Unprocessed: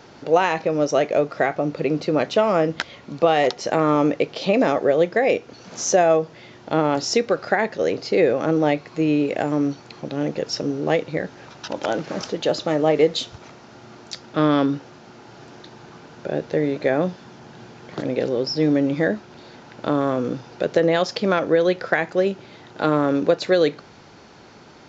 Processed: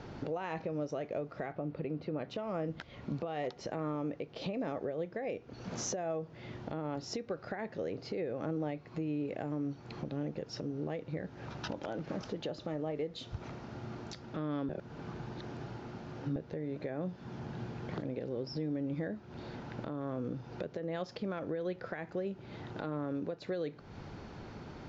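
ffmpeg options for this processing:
-filter_complex "[0:a]asettb=1/sr,asplit=3[s0][s1][s2];[s0]atrim=end=1.524[s3];[s1]atrim=start=1.52:end=2.29,asetpts=PTS-STARTPTS,afade=t=in:d=0.004:c=qsin,afade=t=out:st=0.766:d=0.004:c=qsin,lowpass=3800[s4];[s2]atrim=start=2.286[s5];[s3][s4]acrossfade=d=0.004:c1=hsin:c2=qsin[s6];[s6][s5]acrossfade=d=0.004:c1=qsin:c2=hsin,asplit=3[s7][s8][s9];[s7]atrim=end=14.692[s10];[s8]atrim=start=14.688:end=16.362,asetpts=PTS-STARTPTS,areverse[s11];[s9]atrim=start=16.358[s12];[s10][s11]acrossfade=d=0.004:c1=hsin:c2=hsin[s13];[s13][s12]acrossfade=d=0.004:c1=hsin:c2=hsin,aemphasis=mode=reproduction:type=bsi,acompressor=threshold=0.0316:ratio=3,alimiter=limit=0.0708:level=0:latency=1:release=357,volume=0.631"

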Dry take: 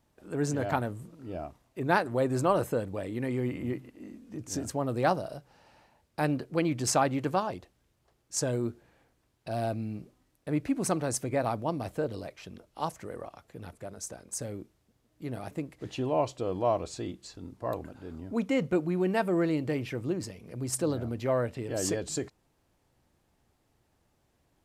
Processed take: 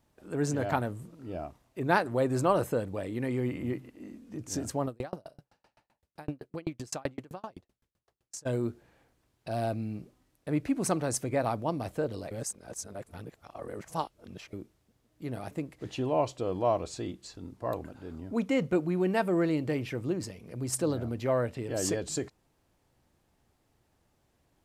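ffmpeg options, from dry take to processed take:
-filter_complex "[0:a]asplit=3[s0][s1][s2];[s0]afade=t=out:st=4.86:d=0.02[s3];[s1]aeval=exprs='val(0)*pow(10,-38*if(lt(mod(7.8*n/s,1),2*abs(7.8)/1000),1-mod(7.8*n/s,1)/(2*abs(7.8)/1000),(mod(7.8*n/s,1)-2*abs(7.8)/1000)/(1-2*abs(7.8)/1000))/20)':c=same,afade=t=in:st=4.86:d=0.02,afade=t=out:st=8.45:d=0.02[s4];[s2]afade=t=in:st=8.45:d=0.02[s5];[s3][s4][s5]amix=inputs=3:normalize=0,asplit=3[s6][s7][s8];[s6]atrim=end=12.312[s9];[s7]atrim=start=12.308:end=14.532,asetpts=PTS-STARTPTS,areverse[s10];[s8]atrim=start=14.528[s11];[s9][s10]acrossfade=d=0.004:c1=hsin:c2=hsin[s12];[s12][s11]acrossfade=d=0.004:c1=hsin:c2=hsin"

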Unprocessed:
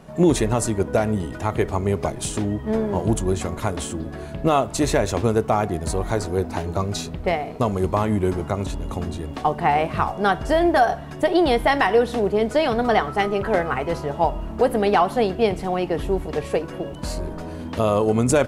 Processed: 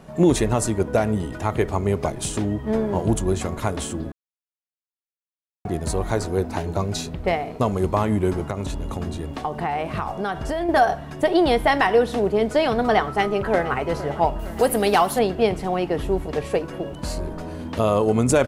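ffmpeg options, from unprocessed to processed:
-filter_complex "[0:a]asettb=1/sr,asplit=3[s0][s1][s2];[s0]atrim=end=6.604[s3];[s1]atrim=start=6.6:end=7.13,asetpts=PTS-STARTPTS,afade=t=in:d=0.004:c=qsin,afade=t=out:st=0.526:d=0.004:c=qsin,bandreject=f=1200:w=10[s4];[s2]atrim=start=7.126[s5];[s3][s4]acrossfade=d=0.004:c1=hsin:c2=qsin[s6];[s6][s5]acrossfade=d=0.004:c1=qsin:c2=hsin,asettb=1/sr,asplit=3[s7][s8][s9];[s7]atrim=end=8.504[s10];[s8]atrim=start=8.5:end=10.69,asetpts=PTS-STARTPTS,afade=t=in:d=0.004:c=qsin,afade=t=out:st=2.186:d=0.004:c=qsin,acompressor=threshold=0.0891:ratio=6:attack=3.2:release=140:knee=1:detection=peak[s11];[s9]atrim=start=10.686[s12];[s10][s11]acrossfade=d=0.004:c1=hsin:c2=qsin[s13];[s13][s12]acrossfade=d=0.004:c1=qsin:c2=hsin,asplit=2[s14][s15];[s15]afade=t=in:st=13.07:d=0.01,afade=t=out:st=13.86:d=0.01,aecho=0:1:460|920|1380|1840|2300|2760|3220:0.158489|0.103018|0.0669617|0.0435251|0.0282913|0.0183894|0.0119531[s16];[s14][s16]amix=inputs=2:normalize=0,asettb=1/sr,asplit=3[s17][s18][s19];[s17]atrim=end=14.394[s20];[s18]atrim=start=14.39:end=15.19,asetpts=PTS-STARTPTS,afade=t=in:d=0.004:c=qsin,afade=t=out:st=0.796:d=0.004:c=qsin,aemphasis=mode=production:type=75fm[s21];[s19]atrim=start=15.186[s22];[s20][s21]acrossfade=d=0.004:c1=hsin:c2=qsin[s23];[s23][s22]acrossfade=d=0.004:c1=qsin:c2=hsin,asplit=3[s24][s25][s26];[s24]atrim=end=4.12,asetpts=PTS-STARTPTS,afade=t=out:st=4.116:d=0.004:c=hsin[s27];[s25]atrim=start=4.12:end=5.65,asetpts=PTS-STARTPTS,volume=0[s28];[s26]atrim=start=5.65,asetpts=PTS-STARTPTS,afade=t=in:d=0.004:c=hsin[s29];[s27][s28][s29]concat=n=3:v=0:a=1"

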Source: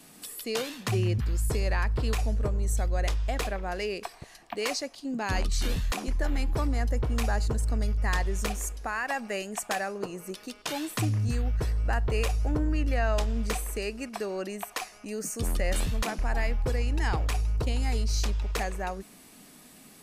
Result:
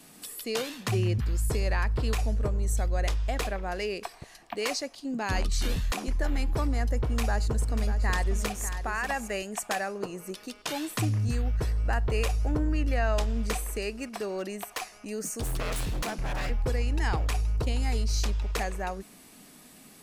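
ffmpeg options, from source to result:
-filter_complex "[0:a]asettb=1/sr,asplit=3[s0][s1][s2];[s0]atrim=end=6.974[s3];[s1]atrim=start=6.97:end=9.43,asetpts=PTS-STARTPTS,afade=t=in:d=0.004:c=qsin,afade=t=out:st=2.456:d=0.004:c=qsin,aecho=1:1:591:0.316,atrim=end_sample=108486[s4];[s2]atrim=start=9.426[s5];[s3][s4]acrossfade=d=0.004:c1=hsin:c2=qsin[s6];[s6][s5]acrossfade=d=0.004:c1=qsin:c2=hsin,asettb=1/sr,asplit=3[s7][s8][s9];[s7]atrim=end=13.894[s10];[s8]atrim=start=13.89:end=16.5,asetpts=PTS-STARTPTS,afade=t=in:d=0.004:c=qsin,afade=t=out:st=2.606:d=0.004:c=qsin,aeval=exprs='0.0531*(abs(mod(val(0)/0.0531+3,4)-2)-1)':c=same[s11];[s9]atrim=start=16.496[s12];[s10][s11]acrossfade=d=0.004:c1=hsin:c2=qsin[s13];[s13][s12]acrossfade=d=0.004:c1=qsin:c2=hsin"

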